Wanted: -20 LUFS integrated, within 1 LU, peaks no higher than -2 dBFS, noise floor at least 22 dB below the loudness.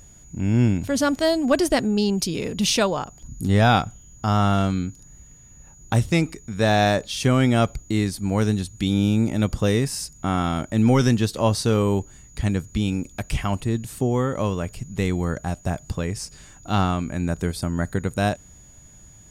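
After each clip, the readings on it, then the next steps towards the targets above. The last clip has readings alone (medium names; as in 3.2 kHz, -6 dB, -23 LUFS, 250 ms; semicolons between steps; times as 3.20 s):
steady tone 6.8 kHz; tone level -49 dBFS; loudness -22.5 LUFS; peak level -7.0 dBFS; loudness target -20.0 LUFS
-> band-stop 6.8 kHz, Q 30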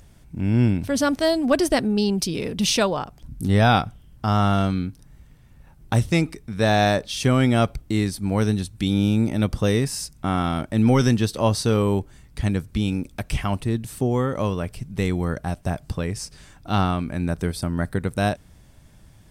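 steady tone not found; loudness -22.5 LUFS; peak level -7.0 dBFS; loudness target -20.0 LUFS
-> trim +2.5 dB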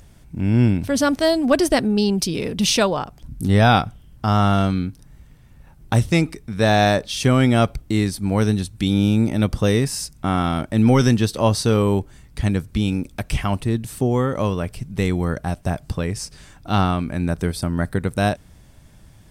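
loudness -20.0 LUFS; peak level -4.5 dBFS; noise floor -48 dBFS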